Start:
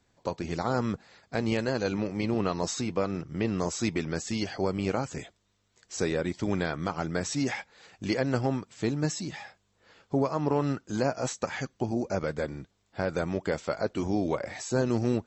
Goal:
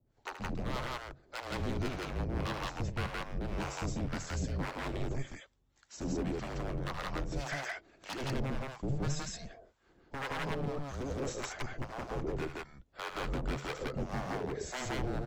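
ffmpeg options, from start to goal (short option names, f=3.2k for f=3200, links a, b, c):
-filter_complex "[0:a]highshelf=f=2.3k:g=-8,aeval=exprs='0.0422*(abs(mod(val(0)/0.0422+3,4)-2)-1)':c=same,acrossover=split=740[a][b];[a]aeval=exprs='val(0)*(1-1/2+1/2*cos(2*PI*1.8*n/s))':c=same[c];[b]aeval=exprs='val(0)*(1-1/2-1/2*cos(2*PI*1.8*n/s))':c=same[d];[c][d]amix=inputs=2:normalize=0,afreqshift=-140,aecho=1:1:75.8|169.1:0.355|1"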